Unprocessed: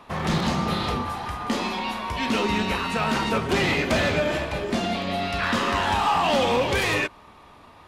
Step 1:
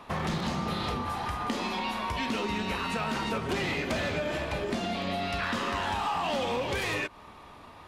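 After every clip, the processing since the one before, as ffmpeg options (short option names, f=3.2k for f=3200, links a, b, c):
-af "acompressor=threshold=-28dB:ratio=6"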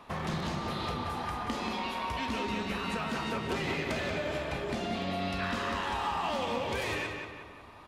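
-filter_complex "[0:a]asplit=2[a][b];[b]adelay=182,lowpass=f=4.2k:p=1,volume=-4.5dB,asplit=2[c][d];[d]adelay=182,lowpass=f=4.2k:p=1,volume=0.5,asplit=2[e][f];[f]adelay=182,lowpass=f=4.2k:p=1,volume=0.5,asplit=2[g][h];[h]adelay=182,lowpass=f=4.2k:p=1,volume=0.5,asplit=2[i][j];[j]adelay=182,lowpass=f=4.2k:p=1,volume=0.5,asplit=2[k][l];[l]adelay=182,lowpass=f=4.2k:p=1,volume=0.5[m];[a][c][e][g][i][k][m]amix=inputs=7:normalize=0,volume=-4dB"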